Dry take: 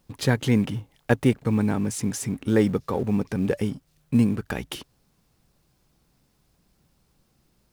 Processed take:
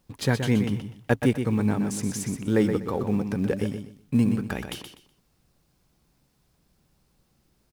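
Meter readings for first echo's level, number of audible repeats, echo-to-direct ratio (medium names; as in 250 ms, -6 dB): -7.5 dB, 3, -7.0 dB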